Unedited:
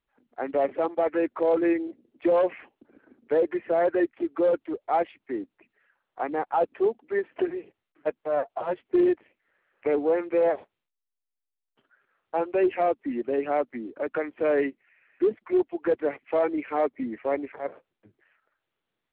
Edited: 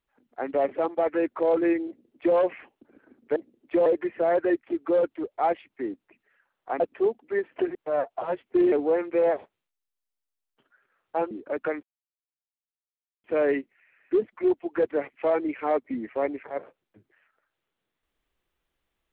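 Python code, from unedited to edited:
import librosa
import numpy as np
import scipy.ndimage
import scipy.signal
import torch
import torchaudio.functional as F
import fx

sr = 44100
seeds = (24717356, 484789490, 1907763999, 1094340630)

y = fx.edit(x, sr, fx.duplicate(start_s=1.87, length_s=0.5, to_s=3.36),
    fx.cut(start_s=6.3, length_s=0.3),
    fx.cut(start_s=7.55, length_s=0.59),
    fx.cut(start_s=9.11, length_s=0.8),
    fx.cut(start_s=12.5, length_s=1.31),
    fx.insert_silence(at_s=14.33, length_s=1.41), tone=tone)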